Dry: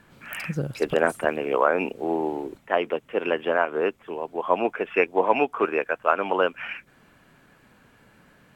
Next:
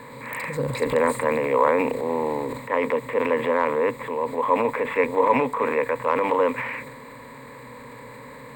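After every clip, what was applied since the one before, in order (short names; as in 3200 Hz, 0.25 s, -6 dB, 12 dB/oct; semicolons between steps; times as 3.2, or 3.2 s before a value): per-bin compression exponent 0.6; ripple EQ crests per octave 1, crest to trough 17 dB; transient shaper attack -1 dB, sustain +7 dB; gain -6 dB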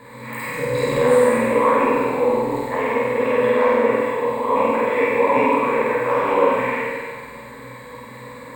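on a send: flutter echo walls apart 8.3 m, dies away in 0.91 s; on the sum: plate-style reverb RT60 1.6 s, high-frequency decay 1×, DRR -5 dB; gain -4.5 dB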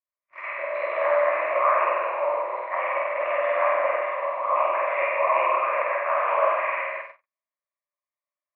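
mistuned SSB +87 Hz 510–2500 Hz; gate -30 dBFS, range -56 dB; harmonic-percussive split harmonic -4 dB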